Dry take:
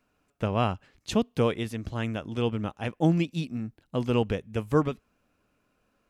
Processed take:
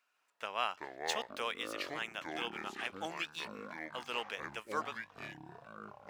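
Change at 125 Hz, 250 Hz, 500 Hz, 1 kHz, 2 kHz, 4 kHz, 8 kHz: −29.0, −21.0, −14.0, −5.0, +0.5, −1.0, −1.5 decibels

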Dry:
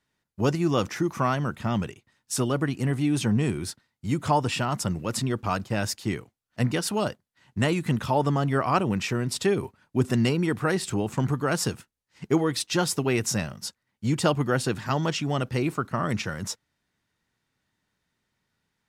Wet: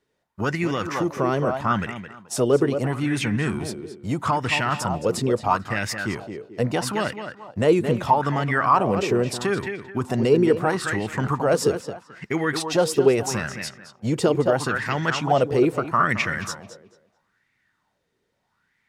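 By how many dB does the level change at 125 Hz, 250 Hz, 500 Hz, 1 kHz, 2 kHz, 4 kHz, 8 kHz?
−0.5, +1.5, +6.5, +6.0, +6.0, +0.5, −0.5 decibels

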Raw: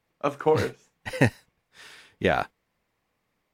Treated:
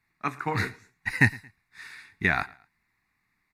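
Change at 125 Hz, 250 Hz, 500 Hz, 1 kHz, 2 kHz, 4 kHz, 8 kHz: −0.5, −3.0, −13.5, −3.0, +5.5, −2.5, −2.0 decibels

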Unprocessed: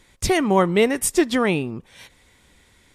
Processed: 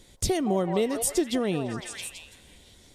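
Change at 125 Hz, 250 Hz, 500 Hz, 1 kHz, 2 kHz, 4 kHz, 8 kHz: −5.5, −6.5, −6.5, −9.5, −13.0, −5.5, −3.5 decibels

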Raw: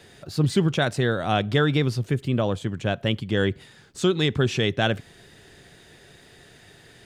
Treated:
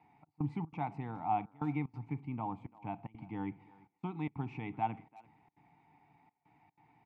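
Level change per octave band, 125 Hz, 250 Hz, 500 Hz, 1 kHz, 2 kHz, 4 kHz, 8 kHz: −17.0 dB, −14.0 dB, −24.0 dB, −6.0 dB, −23.5 dB, −36.0 dB, below −40 dB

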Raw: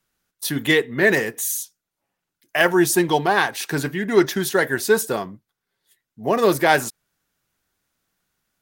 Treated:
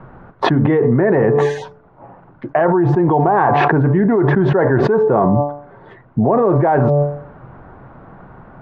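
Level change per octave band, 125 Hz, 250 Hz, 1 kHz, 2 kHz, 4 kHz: +15.0 dB, +7.5 dB, +7.0 dB, −3.5 dB, can't be measured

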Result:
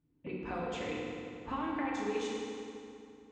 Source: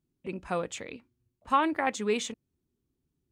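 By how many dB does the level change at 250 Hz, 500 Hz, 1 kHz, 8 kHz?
−3.0, −4.5, −9.5, −11.0 decibels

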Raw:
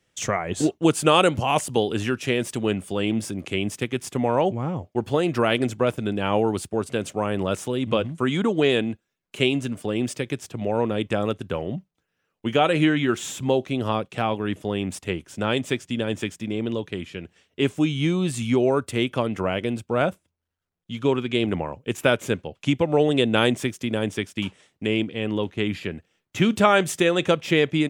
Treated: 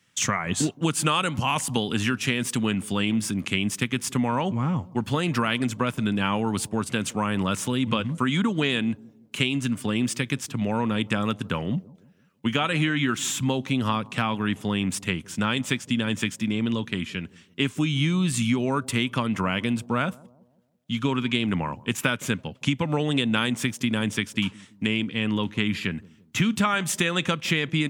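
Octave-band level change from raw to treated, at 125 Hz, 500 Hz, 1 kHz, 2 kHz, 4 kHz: +1.0, −9.0, −2.5, +1.0, +1.0 decibels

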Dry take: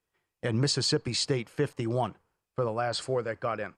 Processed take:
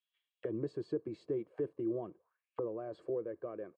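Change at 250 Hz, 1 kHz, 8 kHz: −6.5 dB, −18.0 dB, below −40 dB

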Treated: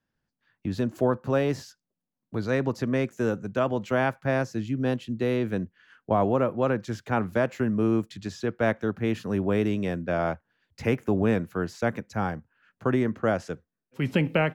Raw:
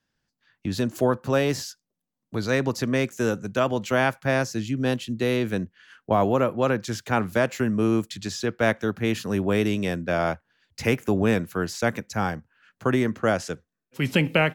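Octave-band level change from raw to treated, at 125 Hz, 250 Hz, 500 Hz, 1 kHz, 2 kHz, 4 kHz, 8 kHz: −1.5 dB, −1.5 dB, −2.0 dB, −3.0 dB, −5.0 dB, −8.5 dB, below −10 dB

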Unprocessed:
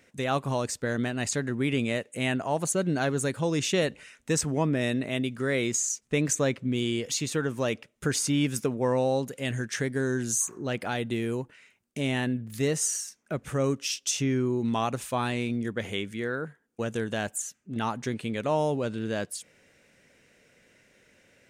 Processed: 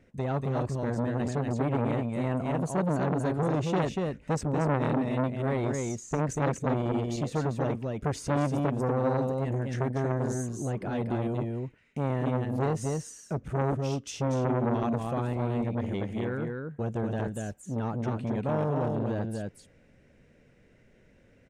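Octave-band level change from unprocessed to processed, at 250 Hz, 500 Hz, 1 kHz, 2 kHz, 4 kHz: −0.5, −1.0, +1.0, −7.5, −13.0 decibels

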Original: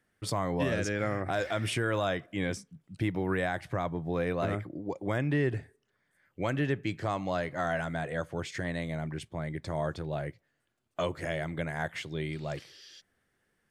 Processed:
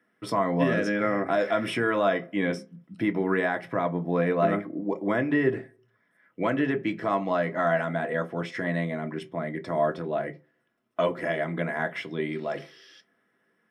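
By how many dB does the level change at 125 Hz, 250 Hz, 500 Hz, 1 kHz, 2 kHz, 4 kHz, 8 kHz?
−0.5 dB, +6.5 dB, +6.5 dB, +6.5 dB, +5.5 dB, 0.0 dB, can't be measured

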